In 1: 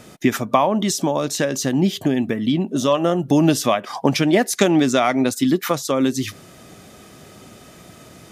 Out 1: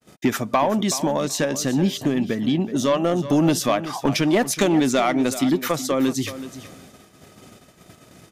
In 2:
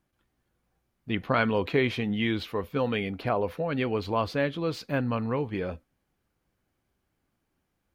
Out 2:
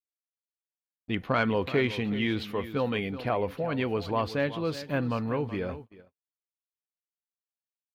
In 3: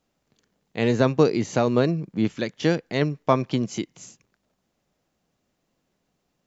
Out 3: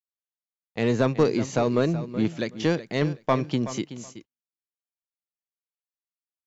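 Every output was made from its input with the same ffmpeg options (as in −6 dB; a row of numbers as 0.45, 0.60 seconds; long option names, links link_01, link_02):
-af "acontrast=83,aecho=1:1:375|750:0.211|0.038,agate=range=-56dB:threshold=-35dB:ratio=16:detection=peak,volume=-8dB"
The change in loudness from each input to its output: −2.0, −1.0, −2.0 LU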